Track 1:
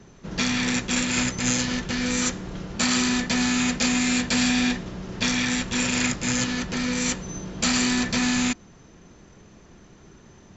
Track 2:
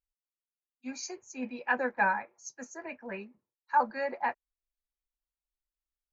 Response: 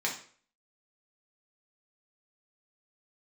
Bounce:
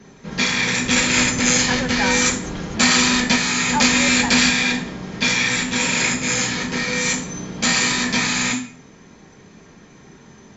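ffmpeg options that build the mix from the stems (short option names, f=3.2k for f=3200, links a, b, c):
-filter_complex "[0:a]equalizer=f=100:t=o:w=0.32:g=7,volume=2dB,asplit=2[a][b];[b]volume=-3.5dB[c];[1:a]volume=2dB,asplit=2[d][e];[e]apad=whole_len=465819[f];[a][f]sidechaingate=range=-10dB:threshold=-53dB:ratio=16:detection=peak[g];[2:a]atrim=start_sample=2205[h];[c][h]afir=irnorm=-1:irlink=0[i];[g][d][i]amix=inputs=3:normalize=0"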